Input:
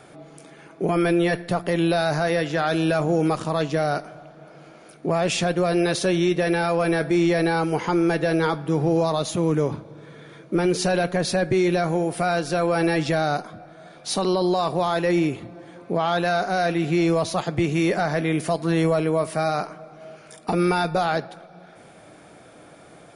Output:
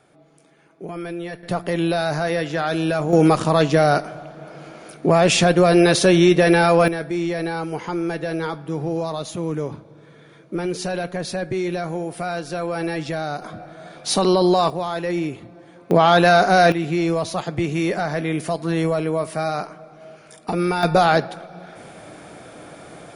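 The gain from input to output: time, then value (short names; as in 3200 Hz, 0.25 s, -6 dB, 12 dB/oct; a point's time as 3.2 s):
-10 dB
from 1.43 s 0 dB
from 3.13 s +7 dB
from 6.88 s -4 dB
from 13.42 s +5 dB
from 14.7 s -3 dB
from 15.91 s +8.5 dB
from 16.72 s -0.5 dB
from 20.83 s +7 dB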